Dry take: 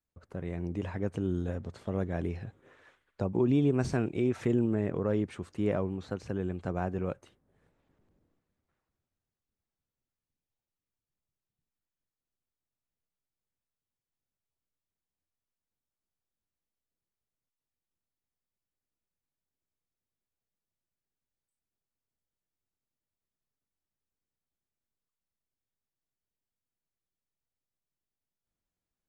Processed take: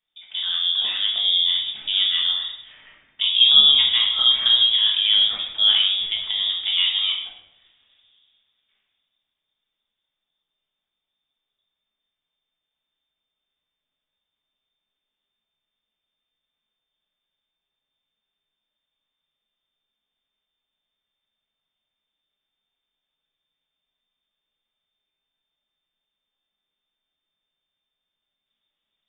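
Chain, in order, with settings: bell 68 Hz -10.5 dB 0.78 oct; inverted band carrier 3600 Hz; reverb RT60 0.90 s, pre-delay 5 ms, DRR -2.5 dB; gain +7.5 dB

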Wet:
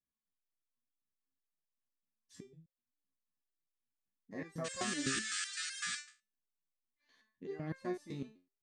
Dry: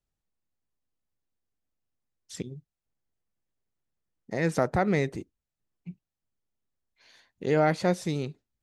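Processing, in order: painted sound noise, 4.64–5.99, 1200–9100 Hz -22 dBFS; small resonant body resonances 240/1100/1700 Hz, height 14 dB, ringing for 35 ms; stepped resonator 7.9 Hz 67–530 Hz; gain -8 dB

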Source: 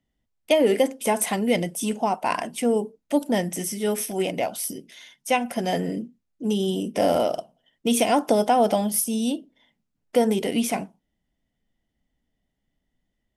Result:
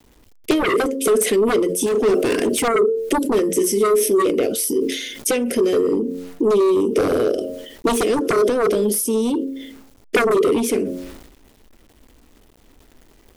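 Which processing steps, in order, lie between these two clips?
resonant low shelf 550 Hz +6.5 dB, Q 3; fixed phaser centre 380 Hz, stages 4; de-hum 89.96 Hz, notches 7; sine folder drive 14 dB, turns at -1 dBFS; bit-crush 9-bit; 1.86–2.68 hard clip -10.5 dBFS, distortion -19 dB; compressor 16:1, threshold -19 dBFS, peak gain reduction 16.5 dB; dynamic EQ 410 Hz, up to +7 dB, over -35 dBFS, Q 4; sustainer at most 54 dB/s

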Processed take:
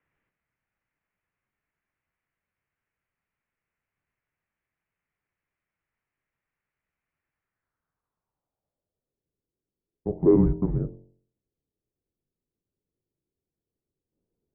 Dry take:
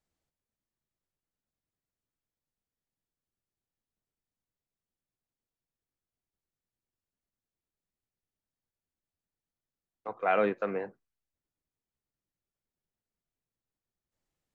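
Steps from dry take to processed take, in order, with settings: de-hum 46.21 Hz, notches 28; in parallel at -2 dB: compressor, threshold -37 dBFS, peak gain reduction 14 dB; on the sum: mistuned SSB -340 Hz 190–3300 Hz; low-pass sweep 2100 Hz -> 390 Hz, 7.33–9.34; gain +4 dB

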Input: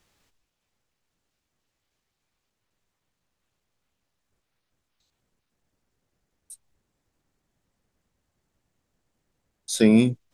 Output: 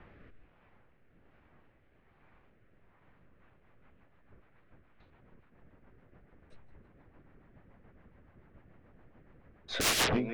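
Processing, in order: LPF 2100 Hz 24 dB/oct; on a send: thinning echo 0.162 s, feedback 46%, high-pass 580 Hz, level -19.5 dB; on the sum: sine folder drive 18 dB, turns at -19.5 dBFS; rotary speaker horn 1.2 Hz, later 7 Hz, at 3.02; gain -3 dB

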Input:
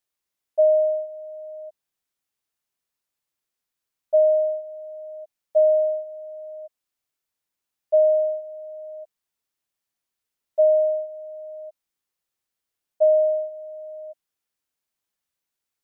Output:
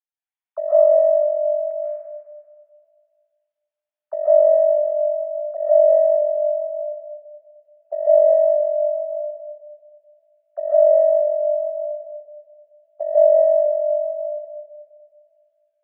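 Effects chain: sine-wave speech; HPF 480 Hz 6 dB/oct; negative-ratio compressor -22 dBFS, ratio -0.5; limiter -20.5 dBFS, peak gain reduction 7.5 dB; digital reverb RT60 2 s, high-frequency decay 0.5×, pre-delay 0.105 s, DRR -9.5 dB; ending taper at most 330 dB/s; gain +4 dB

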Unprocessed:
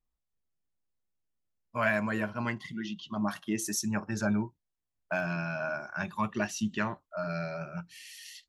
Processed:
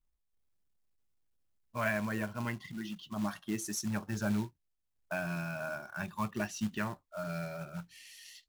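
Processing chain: low shelf 88 Hz +10.5 dB; short-mantissa float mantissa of 2-bit; gain -5 dB

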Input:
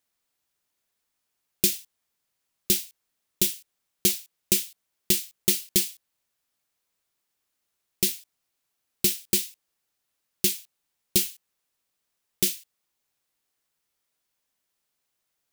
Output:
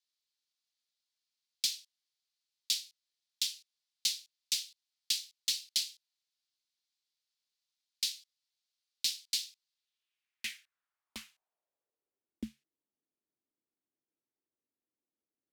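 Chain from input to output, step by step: frequency shift -140 Hz; band-pass sweep 4300 Hz -> 300 Hz, 9.69–12.41

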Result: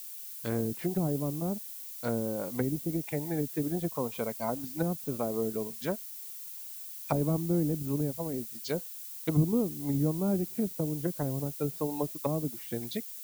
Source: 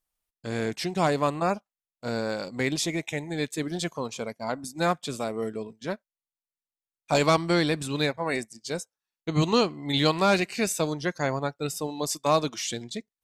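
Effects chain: treble ducked by the level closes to 300 Hz, closed at -24 dBFS; added noise violet -43 dBFS

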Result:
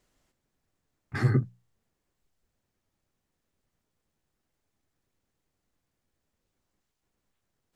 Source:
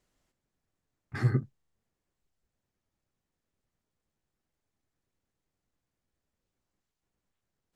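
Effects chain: notches 60/120/180 Hz; gain +4.5 dB

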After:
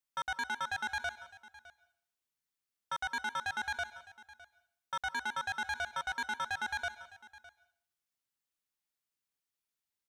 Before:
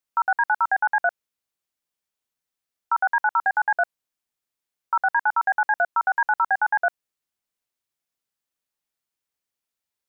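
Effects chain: bell 580 Hz -4 dB 1.4 oct; soft clip -27.5 dBFS, distortion -8 dB; on a send: echo 0.609 s -19 dB; on the sum: plate-style reverb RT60 0.57 s, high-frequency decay 0.95×, pre-delay 0.12 s, DRR 16.5 dB; gain -4.5 dB

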